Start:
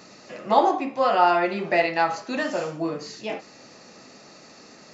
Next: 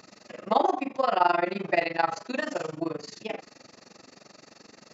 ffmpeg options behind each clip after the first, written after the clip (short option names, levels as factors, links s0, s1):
-af "tremolo=f=23:d=0.947"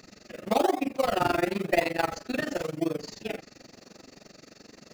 -filter_complex "[0:a]equalizer=f=980:w=2.2:g=-9,asplit=2[s0][s1];[s1]acrusher=samples=30:mix=1:aa=0.000001:lfo=1:lforange=30:lforate=0.95,volume=0.473[s2];[s0][s2]amix=inputs=2:normalize=0"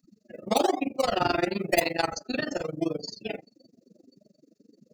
-filter_complex "[0:a]afftdn=nr=35:nf=-40,acrossover=split=2900[s0][s1];[s1]crystalizer=i=4.5:c=0[s2];[s0][s2]amix=inputs=2:normalize=0"